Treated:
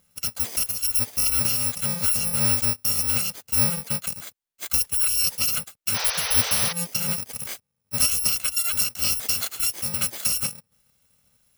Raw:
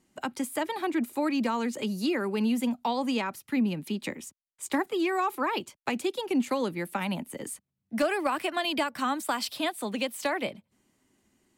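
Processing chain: bit-reversed sample order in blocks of 128 samples; painted sound noise, 5.94–6.73 s, 420–6200 Hz -34 dBFS; trim +5 dB

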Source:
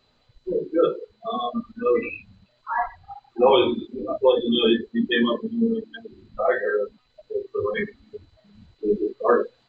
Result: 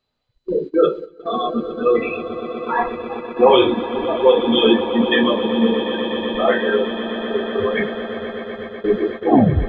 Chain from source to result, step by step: tape stop on the ending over 0.56 s; echo with a slow build-up 123 ms, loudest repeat 8, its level -16 dB; gate -31 dBFS, range -16 dB; trim +4.5 dB

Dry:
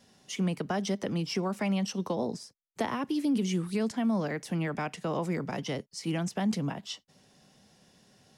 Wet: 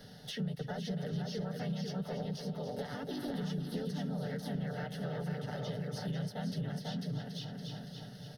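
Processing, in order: harmony voices -3 st -4 dB, +3 st -3 dB; comb 6.8 ms, depth 51%; delay 495 ms -4 dB; waveshaping leveller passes 1; peaking EQ 8.3 kHz +2.5 dB 2.3 oct; static phaser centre 1.6 kHz, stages 8; feedback delay 282 ms, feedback 46%, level -12.5 dB; compression 4:1, threshold -43 dBFS, peak gain reduction 18.5 dB; resonant low shelf 510 Hz +6 dB, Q 1.5; three bands compressed up and down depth 40%

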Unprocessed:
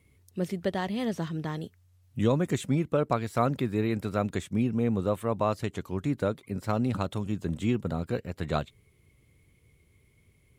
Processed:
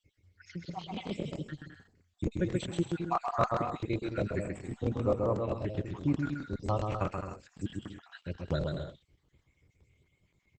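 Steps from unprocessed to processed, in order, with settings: random holes in the spectrogram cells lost 69%; 5.11–5.68 s: low-pass 1.5 kHz 6 dB/octave; 7.24–7.99 s: bass shelf 89 Hz -3 dB; comb of notches 220 Hz; on a send: bouncing-ball echo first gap 130 ms, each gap 0.65×, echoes 5; on the sum: crackling interface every 0.13 s, samples 1024, repeat, from 0.79 s; Opus 12 kbps 48 kHz

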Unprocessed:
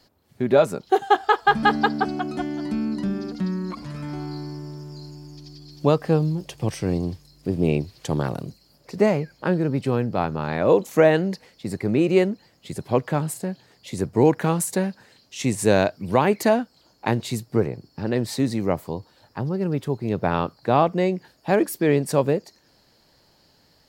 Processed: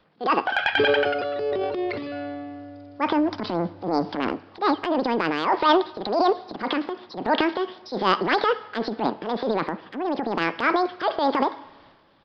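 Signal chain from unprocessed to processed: wide varispeed 1.95×; resampled via 11.025 kHz; on a send at -19.5 dB: reverberation, pre-delay 3 ms; on the sum: transient shaper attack -9 dB, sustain +8 dB

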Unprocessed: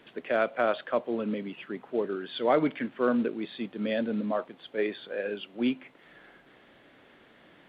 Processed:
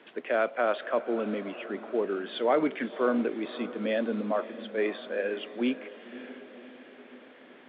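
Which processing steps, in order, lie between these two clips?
three-band isolator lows -19 dB, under 210 Hz, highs -17 dB, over 3.9 kHz; in parallel at 0 dB: peak limiter -22.5 dBFS, peak gain reduction 9.5 dB; on the sum: echo that smears into a reverb 571 ms, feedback 57%, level -14.5 dB; trim -3.5 dB

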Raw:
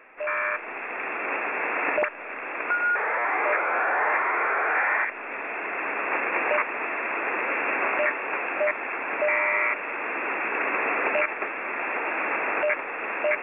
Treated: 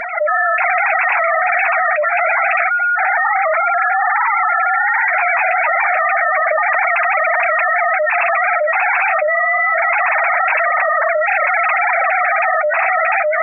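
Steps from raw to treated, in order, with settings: formants replaced by sine waves; flange 0.27 Hz, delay 4.2 ms, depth 6.8 ms, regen +25%; level flattener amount 100%; trim -1.5 dB

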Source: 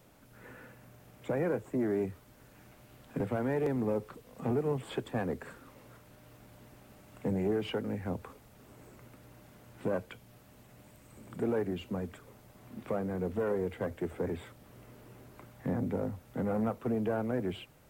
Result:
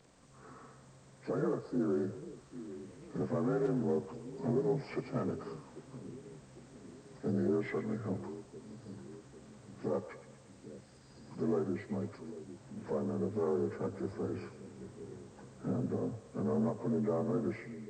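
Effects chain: frequency axis rescaled in octaves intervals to 85%; two-band feedback delay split 440 Hz, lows 798 ms, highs 118 ms, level -13 dB

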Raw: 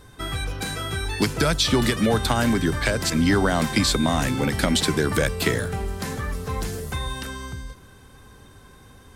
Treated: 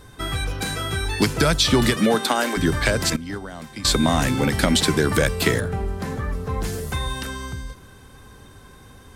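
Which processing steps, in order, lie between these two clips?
1.94–2.56 s: high-pass 120 Hz -> 370 Hz 24 dB/octave; 3.16–3.85 s: gate -15 dBFS, range -17 dB; 5.60–6.64 s: treble shelf 2.3 kHz -11 dB; trim +2.5 dB

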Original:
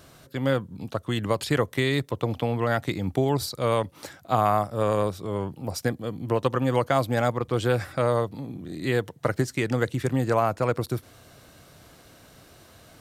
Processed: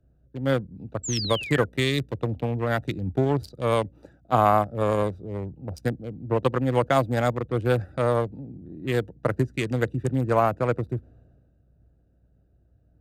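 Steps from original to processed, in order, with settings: local Wiener filter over 41 samples; in parallel at -1.5 dB: compression, threshold -37 dBFS, peak gain reduction 18.5 dB; on the sum: hum 60 Hz, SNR 25 dB; painted sound fall, 1.03–1.65 s, 1.4–7.8 kHz -35 dBFS; three bands expanded up and down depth 70%

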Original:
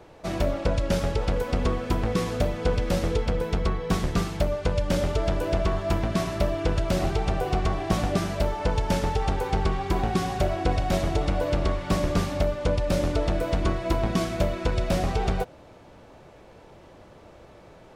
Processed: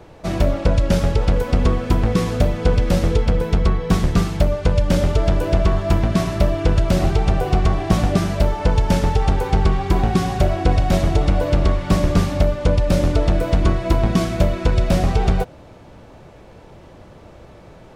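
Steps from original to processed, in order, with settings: tone controls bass +5 dB, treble 0 dB; trim +4.5 dB

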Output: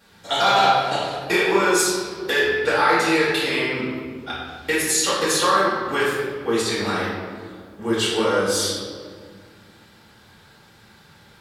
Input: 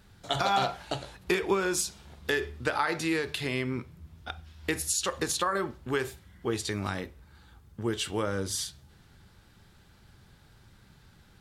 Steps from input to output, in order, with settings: high-pass 410 Hz 6 dB/octave; reverberation RT60 1.9 s, pre-delay 4 ms, DRR -10 dB

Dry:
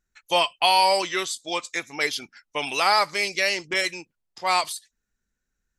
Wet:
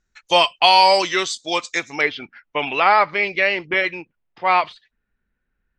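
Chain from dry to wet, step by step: low-pass 6.9 kHz 24 dB/octave, from 2.01 s 2.9 kHz; trim +6 dB

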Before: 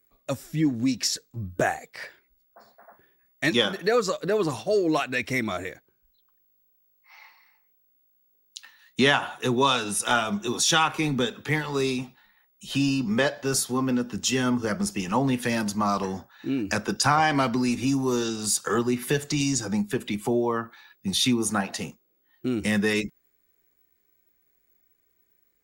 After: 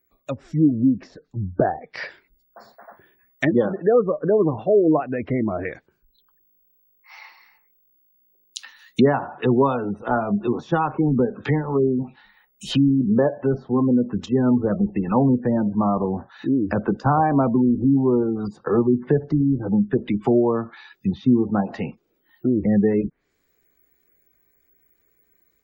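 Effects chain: low-pass that closes with the level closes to 740 Hz, closed at -24 dBFS; spectral gate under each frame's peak -30 dB strong; level rider gain up to 7 dB

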